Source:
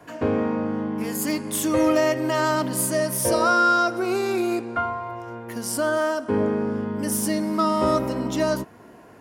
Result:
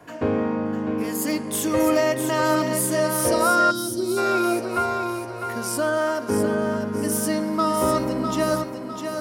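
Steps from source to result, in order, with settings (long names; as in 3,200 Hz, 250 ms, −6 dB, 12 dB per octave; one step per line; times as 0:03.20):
feedback echo with a high-pass in the loop 653 ms, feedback 44%, high-pass 180 Hz, level −6.5 dB
gain on a spectral selection 0:03.71–0:04.17, 420–3,000 Hz −17 dB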